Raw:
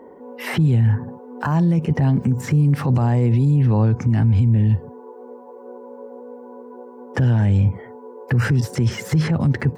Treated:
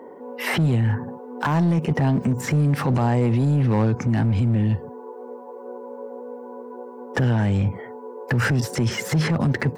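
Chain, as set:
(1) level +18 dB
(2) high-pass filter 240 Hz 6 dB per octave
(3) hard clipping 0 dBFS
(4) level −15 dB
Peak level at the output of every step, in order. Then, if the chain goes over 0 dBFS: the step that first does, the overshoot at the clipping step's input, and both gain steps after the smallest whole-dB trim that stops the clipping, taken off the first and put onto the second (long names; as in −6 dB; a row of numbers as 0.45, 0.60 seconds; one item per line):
+9.5, +7.5, 0.0, −15.0 dBFS
step 1, 7.5 dB
step 1 +10 dB, step 4 −7 dB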